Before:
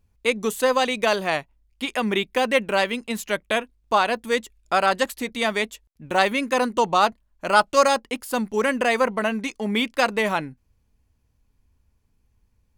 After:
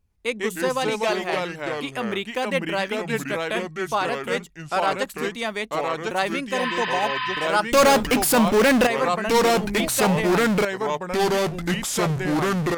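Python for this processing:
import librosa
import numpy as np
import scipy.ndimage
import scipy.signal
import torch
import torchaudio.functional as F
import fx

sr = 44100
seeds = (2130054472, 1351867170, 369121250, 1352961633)

y = fx.power_curve(x, sr, exponent=0.35, at=(7.72, 8.87))
y = fx.echo_pitch(y, sr, ms=102, semitones=-3, count=2, db_per_echo=-3.0)
y = fx.spec_repair(y, sr, seeds[0], start_s=6.6, length_s=0.85, low_hz=940.0, high_hz=5100.0, source='before')
y = F.gain(torch.from_numpy(y), -4.5).numpy()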